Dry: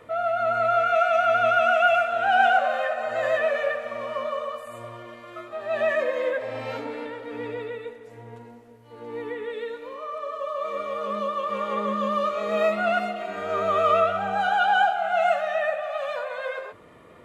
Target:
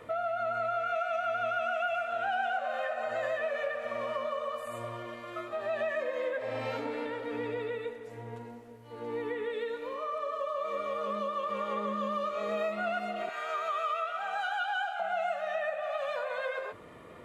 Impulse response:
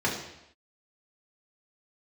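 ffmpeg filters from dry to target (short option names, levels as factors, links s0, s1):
-filter_complex "[0:a]asettb=1/sr,asplit=3[s0][s1][s2];[s0]atrim=end=13.294[s3];[s1]atrim=start=13.29:end=15,asetpts=PTS-STARTPTS,afade=t=in:d=0.004:c=qsin,afade=t=out:st=1.706:d=0.004:c=qsin,highpass=1000[s4];[s2]atrim=start=14.996[s5];[s3][s4]acrossfade=d=0.004:c1=hsin:c2=qsin[s6];[s6][s5]acrossfade=d=0.004:c1=qsin:c2=hsin,acompressor=threshold=0.0282:ratio=4"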